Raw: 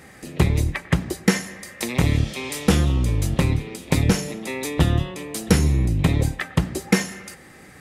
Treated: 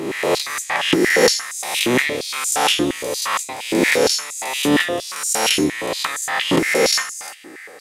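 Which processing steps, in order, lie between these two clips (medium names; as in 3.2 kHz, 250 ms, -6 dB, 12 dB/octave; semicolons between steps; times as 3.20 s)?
reverse spectral sustain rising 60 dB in 1.26 s; step-sequenced high-pass 8.6 Hz 320–7000 Hz; trim +1.5 dB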